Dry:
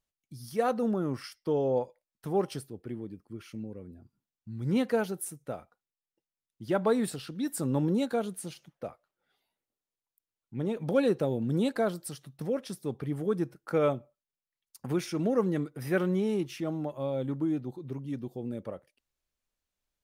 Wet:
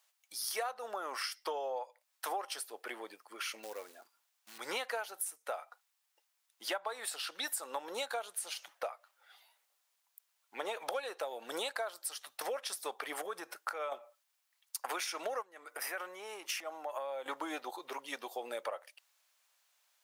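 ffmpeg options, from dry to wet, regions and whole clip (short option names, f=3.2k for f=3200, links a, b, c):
-filter_complex "[0:a]asettb=1/sr,asplit=3[a][b][c];[a]atrim=end=3.634[d];[b]atrim=start=3.63:end=4.58,asetpts=PTS-STARTPTS,afade=t=in:d=0.004:c=qsin,afade=t=out:st=0.946:d=0.004:c=qsin,highpass=130,acrusher=bits=7:mode=log:mix=0:aa=0.000001[e];[c]atrim=start=4.576[f];[d][e]acrossfade=d=0.004:c1=hsin:c2=qsin[g];[g][f]acrossfade=d=0.004:c1=qsin:c2=hsin,asettb=1/sr,asplit=3[h][i][j];[h]atrim=end=13.214[k];[i]atrim=start=13.21:end=13.92,asetpts=PTS-STARTPTS,afade=t=in:d=0.004:c=qsin,afade=t=out:st=0.706:d=0.004:c=qsin,lowshelf=f=160:g=10.5,acompressor=threshold=-37dB:ratio=3:attack=3.2:release=140:knee=1:detection=peak[l];[j]atrim=start=13.916[m];[k][l]acrossfade=d=0.004:c1=hsin:c2=qsin[n];[n][m]acrossfade=d=0.004:c1=qsin:c2=hsin,asettb=1/sr,asplit=3[o][p][q];[o]atrim=end=15.424[r];[p]atrim=start=15.42:end=17.26,asetpts=PTS-STARTPTS,afade=t=in:d=0.004:c=qsin,afade=t=out:st=1.836:d=0.004:c=qsin,acompressor=threshold=-39dB:ratio=16:attack=3.2:release=140:knee=1:detection=peak,equalizer=f=3.7k:w=2.6:g=-7[s];[q]atrim=start=17.256[t];[r][s]acrossfade=d=0.004:c1=hsin:c2=qsin[u];[u][t]acrossfade=d=0.004:c1=qsin:c2=hsin,highpass=f=710:w=0.5412,highpass=f=710:w=1.3066,acompressor=threshold=-50dB:ratio=16,volume=15.5dB"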